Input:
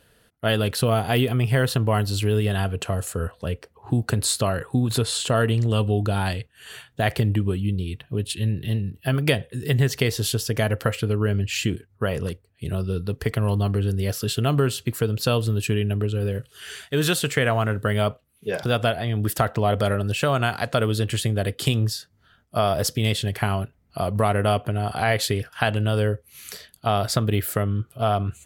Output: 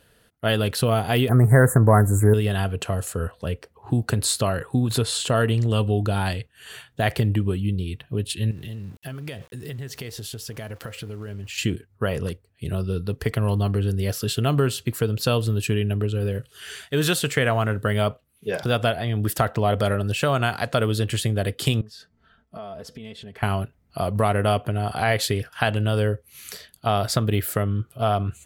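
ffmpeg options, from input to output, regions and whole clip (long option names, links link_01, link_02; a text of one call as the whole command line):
ffmpeg -i in.wav -filter_complex "[0:a]asettb=1/sr,asplit=3[link_01][link_02][link_03];[link_01]atrim=end=1.294[link_04];[link_02]atrim=start=1.29:end=2.34,asetpts=PTS-STARTPTS,afade=type=in:duration=0.004:curve=qsin,afade=type=out:start_time=1.046:duration=0.004:curve=qsin,acontrast=60,asuperstop=centerf=3700:order=12:qfactor=0.71[link_05];[link_03]atrim=start=2.336[link_06];[link_04][link_05]acrossfade=duration=0.004:curve1=hsin:curve2=qsin[link_07];[link_07][link_06]acrossfade=duration=0.004:curve1=qsin:curve2=hsin,asettb=1/sr,asplit=3[link_08][link_09][link_10];[link_08]atrim=end=8.514[link_11];[link_09]atrim=start=8.51:end=11.58,asetpts=PTS-STARTPTS,afade=type=in:duration=0.004:curve=qsin,afade=type=out:start_time=3.066:duration=0.004:curve=qsin,acompressor=threshold=-32dB:ratio=5:attack=3.2:release=140:knee=1:detection=peak,aeval=exprs='val(0)*gte(abs(val(0)),0.00376)':channel_layout=same[link_12];[link_10]atrim=start=11.576[link_13];[link_11][link_12]acrossfade=duration=0.004:curve1=hsin:curve2=qsin[link_14];[link_14][link_13]acrossfade=duration=0.004:curve1=qsin:curve2=hsin,asettb=1/sr,asplit=3[link_15][link_16][link_17];[link_15]atrim=end=21.814[link_18];[link_16]atrim=start=21.81:end=23.43,asetpts=PTS-STARTPTS,afade=type=in:duration=0.004:curve=qsin,afade=type=out:start_time=1.616:duration=0.004:curve=qsin,aemphasis=mode=reproduction:type=75kf,acompressor=threshold=-40dB:ratio=3:attack=3.2:release=140:knee=1:detection=peak,aecho=1:1:4.5:0.61,atrim=end_sample=71442[link_19];[link_17]atrim=start=23.426[link_20];[link_18][link_19]acrossfade=duration=0.004:curve1=hsin:curve2=qsin[link_21];[link_21][link_20]acrossfade=duration=0.004:curve1=qsin:curve2=hsin" out.wav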